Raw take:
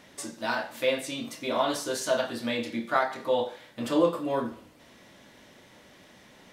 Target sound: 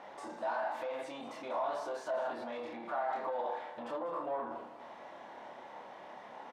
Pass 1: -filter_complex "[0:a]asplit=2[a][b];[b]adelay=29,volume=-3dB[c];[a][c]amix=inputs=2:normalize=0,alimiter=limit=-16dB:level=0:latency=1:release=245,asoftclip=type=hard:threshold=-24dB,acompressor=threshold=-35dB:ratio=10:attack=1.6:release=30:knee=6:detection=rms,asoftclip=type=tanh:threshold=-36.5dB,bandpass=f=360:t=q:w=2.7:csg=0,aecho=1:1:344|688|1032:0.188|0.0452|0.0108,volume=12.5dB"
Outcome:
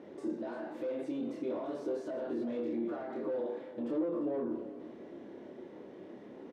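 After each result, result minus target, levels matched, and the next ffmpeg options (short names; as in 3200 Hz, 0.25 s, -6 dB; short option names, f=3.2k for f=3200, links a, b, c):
hard clip: distortion +25 dB; echo 0.148 s late; 1000 Hz band -13.5 dB
-filter_complex "[0:a]asplit=2[a][b];[b]adelay=29,volume=-3dB[c];[a][c]amix=inputs=2:normalize=0,alimiter=limit=-16dB:level=0:latency=1:release=245,asoftclip=type=hard:threshold=-17dB,acompressor=threshold=-35dB:ratio=10:attack=1.6:release=30:knee=6:detection=rms,asoftclip=type=tanh:threshold=-36.5dB,bandpass=f=360:t=q:w=2.7:csg=0,aecho=1:1:196|392|588:0.188|0.0452|0.0108,volume=12.5dB"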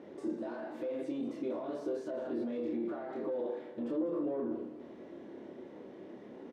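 1000 Hz band -13.5 dB
-filter_complex "[0:a]asplit=2[a][b];[b]adelay=29,volume=-3dB[c];[a][c]amix=inputs=2:normalize=0,alimiter=limit=-16dB:level=0:latency=1:release=245,asoftclip=type=hard:threshold=-17dB,acompressor=threshold=-35dB:ratio=10:attack=1.6:release=30:knee=6:detection=rms,asoftclip=type=tanh:threshold=-36.5dB,bandpass=f=830:t=q:w=2.7:csg=0,aecho=1:1:196|392|588:0.188|0.0452|0.0108,volume=12.5dB"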